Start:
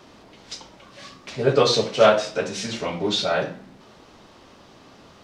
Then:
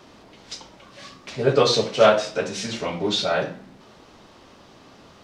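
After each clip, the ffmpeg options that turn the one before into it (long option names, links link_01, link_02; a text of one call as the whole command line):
ffmpeg -i in.wav -af anull out.wav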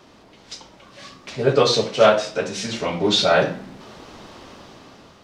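ffmpeg -i in.wav -af "dynaudnorm=framelen=270:gausssize=7:maxgain=11dB,volume=-1dB" out.wav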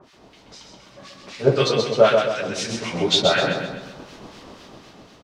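ffmpeg -i in.wav -filter_complex "[0:a]acrossover=split=1300[link_01][link_02];[link_01]aeval=exprs='val(0)*(1-1/2+1/2*cos(2*PI*4*n/s))':channel_layout=same[link_03];[link_02]aeval=exprs='val(0)*(1-1/2-1/2*cos(2*PI*4*n/s))':channel_layout=same[link_04];[link_03][link_04]amix=inputs=2:normalize=0,aecho=1:1:130|260|390|520|650|780:0.562|0.259|0.119|0.0547|0.0252|0.0116,volume=2.5dB" out.wav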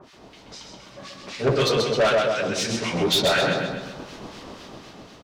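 ffmpeg -i in.wav -af "asoftclip=type=tanh:threshold=-18dB,volume=2.5dB" out.wav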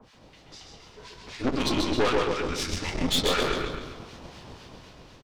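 ffmpeg -i in.wav -filter_complex "[0:a]asplit=5[link_01][link_02][link_03][link_04][link_05];[link_02]adelay=149,afreqshift=-72,volume=-10dB[link_06];[link_03]adelay=298,afreqshift=-144,volume=-18.6dB[link_07];[link_04]adelay=447,afreqshift=-216,volume=-27.3dB[link_08];[link_05]adelay=596,afreqshift=-288,volume=-35.9dB[link_09];[link_01][link_06][link_07][link_08][link_09]amix=inputs=5:normalize=0,afreqshift=-140,aeval=exprs='0.447*(cos(1*acos(clip(val(0)/0.447,-1,1)))-cos(1*PI/2))+0.1*(cos(4*acos(clip(val(0)/0.447,-1,1)))-cos(4*PI/2))':channel_layout=same,volume=-5.5dB" out.wav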